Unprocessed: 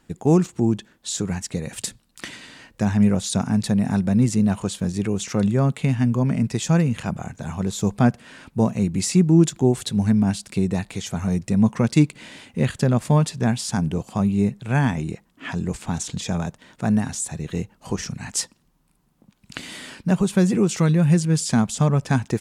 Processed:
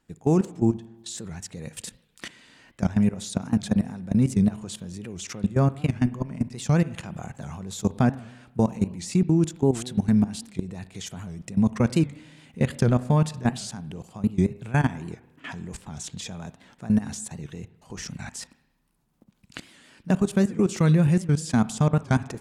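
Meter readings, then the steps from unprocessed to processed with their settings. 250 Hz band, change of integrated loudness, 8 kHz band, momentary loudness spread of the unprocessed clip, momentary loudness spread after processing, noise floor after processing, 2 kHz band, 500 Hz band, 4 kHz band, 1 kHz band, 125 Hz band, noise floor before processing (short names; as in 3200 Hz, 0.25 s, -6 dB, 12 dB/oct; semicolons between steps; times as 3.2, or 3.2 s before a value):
-4.0 dB, -3.0 dB, -7.5 dB, 13 LU, 17 LU, -66 dBFS, -4.0 dB, -3.5 dB, -6.5 dB, -3.5 dB, -4.0 dB, -63 dBFS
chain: level quantiser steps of 18 dB; spring tank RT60 1 s, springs 32/52 ms, chirp 60 ms, DRR 16 dB; record warp 78 rpm, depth 160 cents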